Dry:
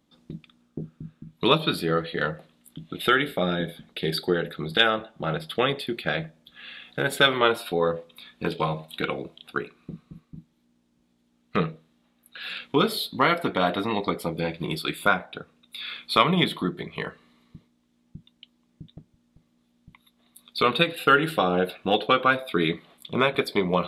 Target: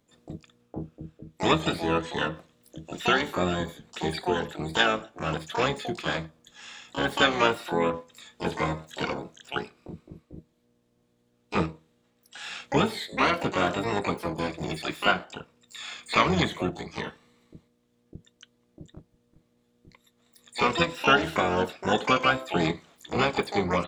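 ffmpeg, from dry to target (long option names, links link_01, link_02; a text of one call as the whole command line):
ffmpeg -i in.wav -filter_complex "[0:a]asplit=3[link_01][link_02][link_03];[link_02]asetrate=22050,aresample=44100,atempo=2,volume=-8dB[link_04];[link_03]asetrate=88200,aresample=44100,atempo=0.5,volume=-4dB[link_05];[link_01][link_04][link_05]amix=inputs=3:normalize=0,acrossover=split=4300[link_06][link_07];[link_07]acompressor=threshold=-43dB:ratio=4:attack=1:release=60[link_08];[link_06][link_08]amix=inputs=2:normalize=0,volume=-3.5dB" out.wav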